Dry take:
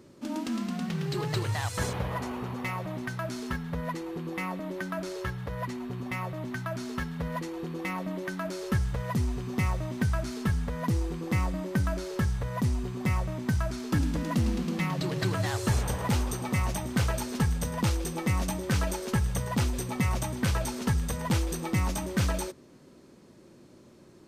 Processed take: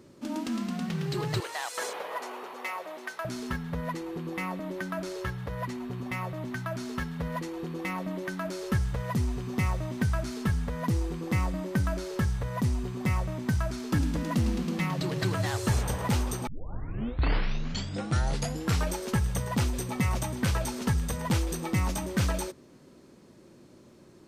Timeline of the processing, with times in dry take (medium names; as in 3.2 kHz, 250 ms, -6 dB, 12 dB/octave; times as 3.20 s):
1.40–3.25 s: high-pass 390 Hz 24 dB/octave
16.47 s: tape start 2.51 s